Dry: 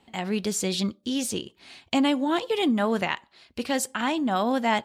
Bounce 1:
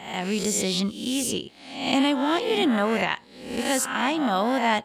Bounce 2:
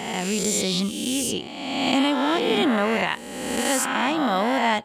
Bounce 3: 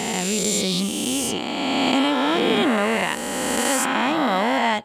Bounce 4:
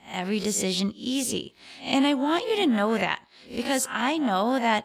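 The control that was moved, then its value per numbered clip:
peak hold with a rise ahead of every peak, rising 60 dB in: 0.67, 1.47, 3.07, 0.32 seconds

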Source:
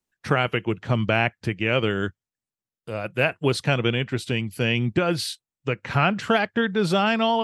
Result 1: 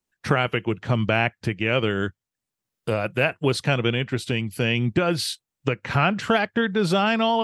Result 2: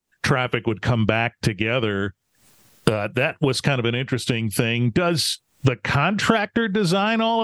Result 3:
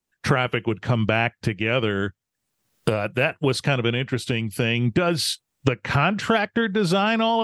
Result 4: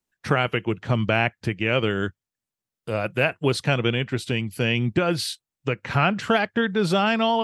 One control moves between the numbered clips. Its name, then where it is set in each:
camcorder AGC, rising by: 13, 89, 34, 5.2 dB per second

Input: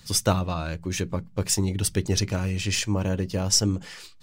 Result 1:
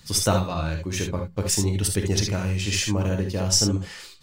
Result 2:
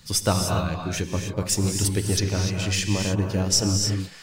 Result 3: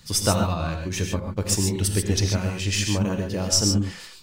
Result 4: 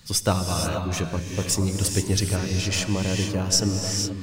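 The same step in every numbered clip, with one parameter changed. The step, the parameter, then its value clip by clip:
reverb whose tail is shaped and stops, gate: 90, 320, 160, 500 milliseconds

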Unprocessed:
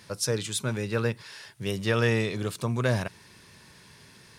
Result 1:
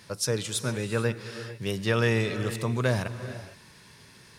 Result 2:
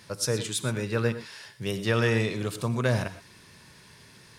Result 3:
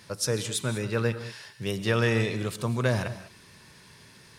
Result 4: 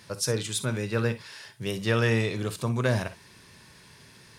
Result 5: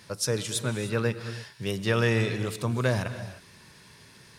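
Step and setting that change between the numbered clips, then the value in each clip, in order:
reverb whose tail is shaped and stops, gate: 480, 140, 220, 80, 330 milliseconds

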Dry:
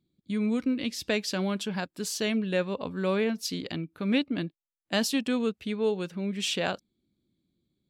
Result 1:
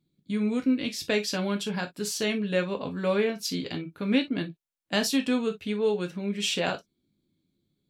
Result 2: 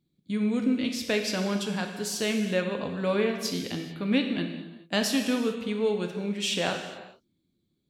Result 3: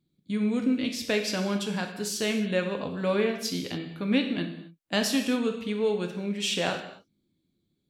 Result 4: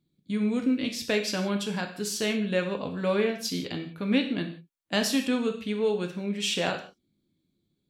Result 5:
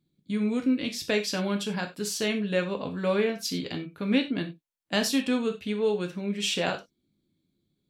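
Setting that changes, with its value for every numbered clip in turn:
reverb whose tail is shaped and stops, gate: 80, 460, 300, 200, 120 milliseconds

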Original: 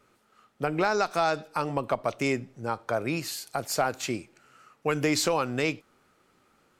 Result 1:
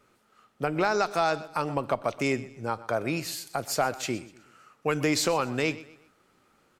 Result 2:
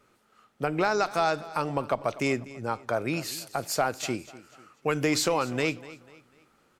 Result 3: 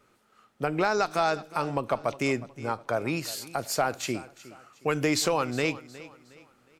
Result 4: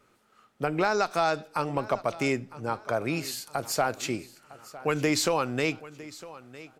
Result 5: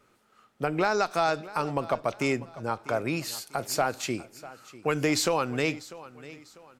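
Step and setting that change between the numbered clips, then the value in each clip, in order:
repeating echo, delay time: 124, 246, 363, 956, 646 milliseconds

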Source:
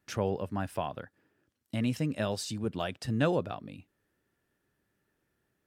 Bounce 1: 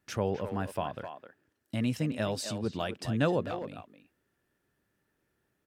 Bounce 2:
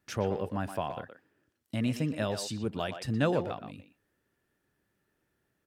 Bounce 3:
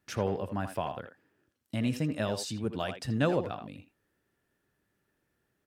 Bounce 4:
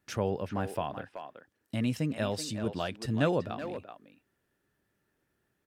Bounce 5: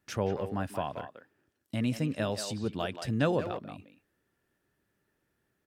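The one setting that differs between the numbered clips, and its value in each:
far-end echo of a speakerphone, delay time: 260, 120, 80, 380, 180 milliseconds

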